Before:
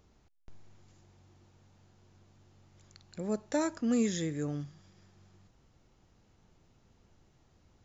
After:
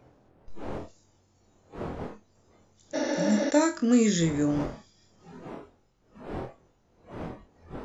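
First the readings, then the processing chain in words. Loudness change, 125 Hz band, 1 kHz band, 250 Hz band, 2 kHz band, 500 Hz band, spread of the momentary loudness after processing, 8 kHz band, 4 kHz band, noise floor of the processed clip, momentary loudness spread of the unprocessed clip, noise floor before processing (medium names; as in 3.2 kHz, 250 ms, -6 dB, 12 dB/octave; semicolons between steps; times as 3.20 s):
+5.5 dB, +8.0 dB, +9.5 dB, +8.5 dB, +10.5 dB, +8.5 dB, 21 LU, no reading, +9.5 dB, -66 dBFS, 13 LU, -67 dBFS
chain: wind noise 530 Hz -50 dBFS; on a send: flutter echo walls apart 4.1 m, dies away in 0.22 s; on the sum: spectral noise reduction 12 dB; spectral replace 2.97–3.48 s, 250–6800 Hz after; trim +7 dB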